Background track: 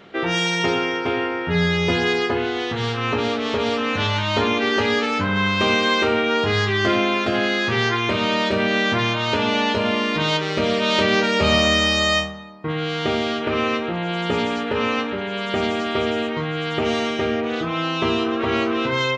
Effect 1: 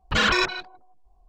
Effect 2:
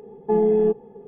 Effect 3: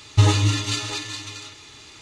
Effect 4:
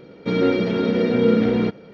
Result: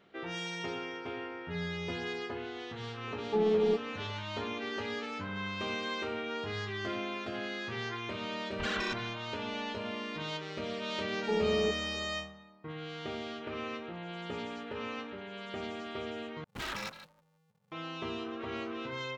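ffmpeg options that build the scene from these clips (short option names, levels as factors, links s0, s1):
-filter_complex "[2:a]asplit=2[s0][s1];[1:a]asplit=2[s2][s3];[0:a]volume=0.133[s4];[s3]aeval=exprs='val(0)*sgn(sin(2*PI*160*n/s))':c=same[s5];[s4]asplit=2[s6][s7];[s6]atrim=end=16.444[s8];[s5]atrim=end=1.28,asetpts=PTS-STARTPTS,volume=0.126[s9];[s7]atrim=start=17.716[s10];[s0]atrim=end=1.07,asetpts=PTS-STARTPTS,volume=0.355,afade=t=in:d=0.004:c=hsin,afade=t=out:st=1.066:d=0.004:c=hsin,adelay=3040[s11];[s2]atrim=end=1.28,asetpts=PTS-STARTPTS,volume=0.168,afade=t=in:d=0.004:c=hsin,afade=t=out:st=1.276:d=0.004:c=hsin,adelay=8480[s12];[s1]atrim=end=1.07,asetpts=PTS-STARTPTS,volume=0.251,afade=t=in:d=0.004:c=hsin,afade=t=out:st=1.066:d=0.004:c=hsin,adelay=10990[s13];[s8][s9]acrossfade=d=0.004:c1=hsin:c2=hsin[s14];[s14][s10]acrossfade=d=0.004:c1=hsin:c2=hsin[s15];[s15][s11][s12][s13]amix=inputs=4:normalize=0"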